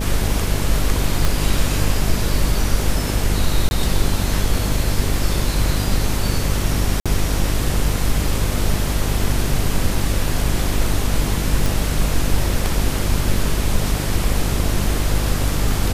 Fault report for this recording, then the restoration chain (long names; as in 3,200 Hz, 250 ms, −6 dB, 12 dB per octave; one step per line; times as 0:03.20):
mains buzz 50 Hz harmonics 13 −22 dBFS
0:01.25: click
0:03.69–0:03.71: drop-out 21 ms
0:07.00–0:07.06: drop-out 56 ms
0:11.66: click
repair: click removal
hum removal 50 Hz, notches 13
repair the gap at 0:03.69, 21 ms
repair the gap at 0:07.00, 56 ms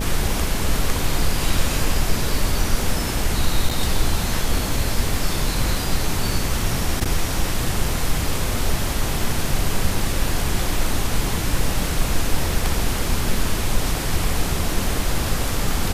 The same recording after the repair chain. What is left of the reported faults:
0:01.25: click